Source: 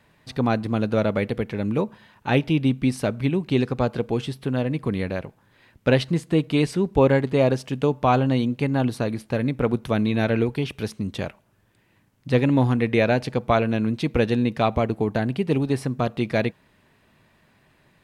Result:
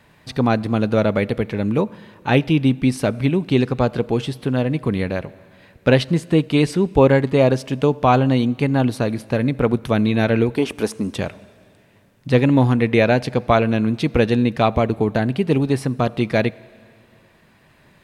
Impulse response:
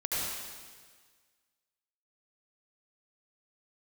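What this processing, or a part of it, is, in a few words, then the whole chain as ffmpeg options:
ducked reverb: -filter_complex "[0:a]asettb=1/sr,asplit=3[s0][s1][s2];[s0]atrim=end=10.574[s3];[s1]atrim=start=10.57:end=11.16,asetpts=PTS-STARTPTS,afade=t=in:d=0.004:c=qsin,afade=t=out:st=0.586:d=0.004:c=qsin,equalizer=f=125:t=o:w=1:g=-12,equalizer=f=250:t=o:w=1:g=5,equalizer=f=500:t=o:w=1:g=4,equalizer=f=1000:t=o:w=1:g=6,equalizer=f=4000:t=o:w=1:g=-4,equalizer=f=8000:t=o:w=1:g=8[s4];[s2]atrim=start=11.156[s5];[s3][s4]acrossfade=d=0.004:c1=hsin:c2=qsin[s6];[s6][s5]acrossfade=d=0.004:c1=qsin:c2=hsin,asplit=3[s7][s8][s9];[1:a]atrim=start_sample=2205[s10];[s8][s10]afir=irnorm=-1:irlink=0[s11];[s9]apad=whole_len=795459[s12];[s11][s12]sidechaincompress=threshold=0.00631:ratio=4:attack=40:release=951,volume=0.316[s13];[s7][s13]amix=inputs=2:normalize=0,volume=1.58"

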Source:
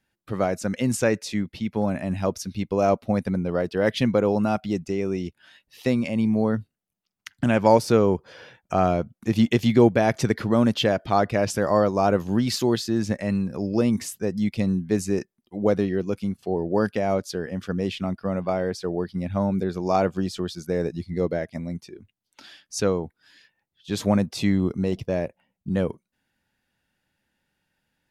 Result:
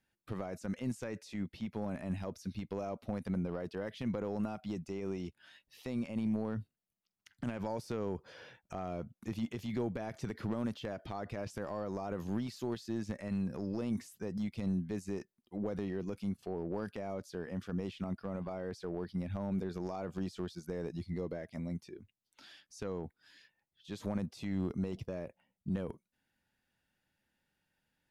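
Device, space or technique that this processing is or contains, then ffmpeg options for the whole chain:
de-esser from a sidechain: -filter_complex "[0:a]asplit=2[s0][s1];[s1]highpass=f=6100:p=1,apad=whole_len=1239320[s2];[s0][s2]sidechaincompress=threshold=0.00282:ratio=3:attack=0.66:release=25,volume=0.473"

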